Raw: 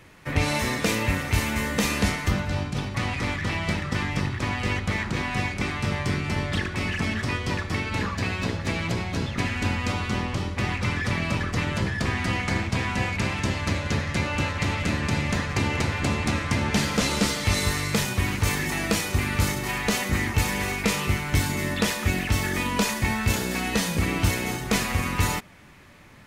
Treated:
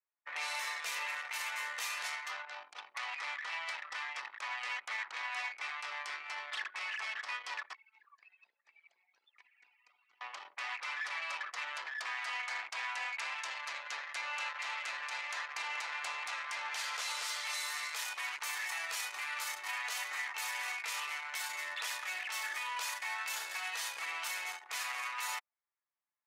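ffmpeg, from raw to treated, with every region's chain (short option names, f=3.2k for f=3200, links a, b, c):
-filter_complex "[0:a]asettb=1/sr,asplit=3[a][b][c];[a]atrim=end=7.734[d];[b]atrim=start=7.73:end=10.21,asetpts=PTS-STARTPTS,afade=t=in:d=0.004:c=qsin,afade=t=out:st=2.476:d=0.004:c=qsin,highpass=54,acrossover=split=480|1200|2500[e][f][g][h];[e]acompressor=threshold=-38dB:ratio=3[i];[f]acompressor=threshold=-45dB:ratio=3[j];[g]acompressor=threshold=-44dB:ratio=3[k];[h]acompressor=threshold=-37dB:ratio=3[l];[i][j][k][l]amix=inputs=4:normalize=0,flanger=delay=2.6:depth=7.8:regen=60:speed=1.1:shape=triangular[m];[c]atrim=start=10.206[n];[d][m]acrossfade=d=0.004:c1=hsin:c2=qsin[o];[o][n]acrossfade=d=0.004:c1=qsin:c2=hsin,anlmdn=39.8,highpass=f=860:w=0.5412,highpass=f=860:w=1.3066,alimiter=limit=-21.5dB:level=0:latency=1:release=32,volume=-7dB"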